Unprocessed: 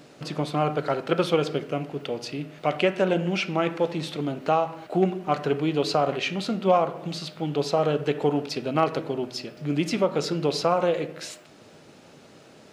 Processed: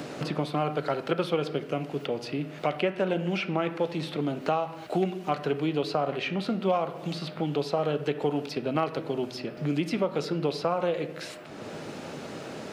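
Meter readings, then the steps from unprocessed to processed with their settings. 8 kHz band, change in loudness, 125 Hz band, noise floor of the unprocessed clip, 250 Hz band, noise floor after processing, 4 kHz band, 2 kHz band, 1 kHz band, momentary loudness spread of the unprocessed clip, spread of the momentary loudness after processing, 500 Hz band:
n/a, -4.0 dB, -2.5 dB, -51 dBFS, -2.5 dB, -42 dBFS, -4.5 dB, -3.0 dB, -4.5 dB, 9 LU, 10 LU, -4.0 dB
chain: dynamic EQ 6900 Hz, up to -7 dB, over -53 dBFS, Q 1.9; three-band squash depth 70%; gain -4 dB

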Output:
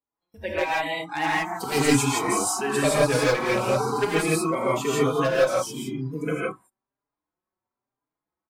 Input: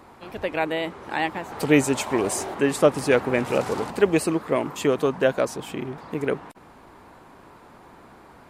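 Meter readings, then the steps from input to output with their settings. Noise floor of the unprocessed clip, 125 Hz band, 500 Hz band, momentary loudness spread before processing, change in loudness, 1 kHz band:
-49 dBFS, +2.5 dB, -1.5 dB, 12 LU, 0.0 dB, +3.0 dB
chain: spectral noise reduction 24 dB; gate with hold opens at -41 dBFS; dynamic EQ 310 Hz, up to -7 dB, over -32 dBFS, Q 0.91; wavefolder -15 dBFS; non-linear reverb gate 0.19 s rising, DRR -6 dB; endless flanger 4.5 ms +1 Hz

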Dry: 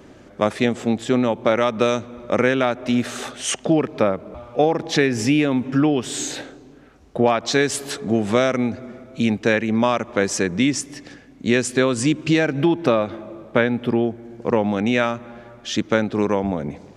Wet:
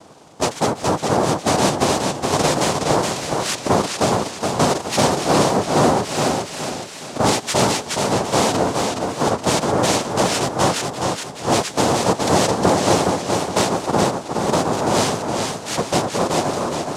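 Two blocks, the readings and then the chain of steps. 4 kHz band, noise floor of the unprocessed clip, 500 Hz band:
+6.0 dB, -47 dBFS, +1.5 dB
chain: thin delay 0.763 s, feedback 59%, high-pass 1800 Hz, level -12 dB; noise vocoder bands 2; warbling echo 0.418 s, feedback 39%, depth 65 cents, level -4 dB

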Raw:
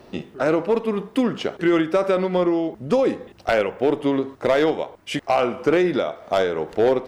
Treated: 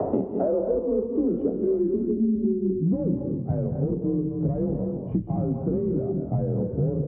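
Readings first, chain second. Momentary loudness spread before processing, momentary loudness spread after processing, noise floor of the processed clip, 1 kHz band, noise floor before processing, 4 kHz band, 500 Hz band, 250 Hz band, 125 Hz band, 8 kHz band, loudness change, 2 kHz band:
5 LU, 3 LU, -33 dBFS, -14.5 dB, -48 dBFS, under -40 dB, -6.5 dB, -1.0 dB, +8.0 dB, n/a, -4.0 dB, under -30 dB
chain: added harmonics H 5 -18 dB, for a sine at -8.5 dBFS; in parallel at -11 dB: sample-and-hold 13×; on the sum: frequency shift +36 Hz; low-pass sweep 690 Hz -> 120 Hz, 0.11–3.63; reverse; compressor, threshold -26 dBFS, peak gain reduction 19 dB; reverse; doubler 26 ms -10.5 dB; spectral gain 1.93–2.86, 450–3300 Hz -25 dB; high shelf 2200 Hz -8.5 dB; non-linear reverb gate 0.28 s rising, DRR 5.5 dB; three-band squash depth 100%; gain +3 dB

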